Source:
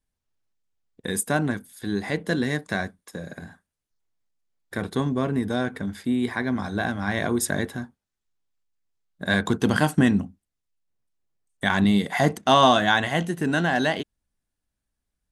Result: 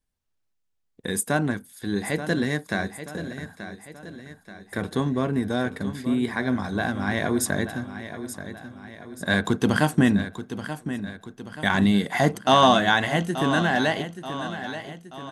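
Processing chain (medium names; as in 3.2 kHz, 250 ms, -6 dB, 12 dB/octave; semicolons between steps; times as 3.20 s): feedback delay 881 ms, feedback 50%, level -11.5 dB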